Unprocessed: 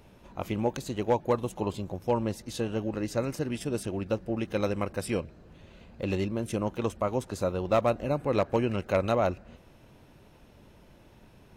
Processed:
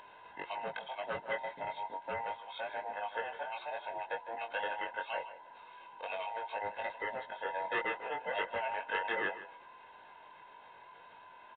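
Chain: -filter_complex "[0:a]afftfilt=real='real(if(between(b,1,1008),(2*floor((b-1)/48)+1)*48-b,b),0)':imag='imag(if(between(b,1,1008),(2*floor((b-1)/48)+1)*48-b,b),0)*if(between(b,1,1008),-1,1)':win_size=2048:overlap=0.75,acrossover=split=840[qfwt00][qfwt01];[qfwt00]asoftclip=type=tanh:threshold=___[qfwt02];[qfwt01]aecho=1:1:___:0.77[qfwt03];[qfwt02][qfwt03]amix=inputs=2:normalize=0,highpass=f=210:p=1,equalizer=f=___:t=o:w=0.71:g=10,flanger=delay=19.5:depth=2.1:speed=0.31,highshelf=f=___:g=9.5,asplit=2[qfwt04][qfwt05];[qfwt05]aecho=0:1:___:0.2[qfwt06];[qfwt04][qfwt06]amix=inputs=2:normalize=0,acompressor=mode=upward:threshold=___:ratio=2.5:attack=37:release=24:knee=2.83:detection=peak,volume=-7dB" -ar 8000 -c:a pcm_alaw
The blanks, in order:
-26.5dB, 1.9, 1400, 3100, 155, -48dB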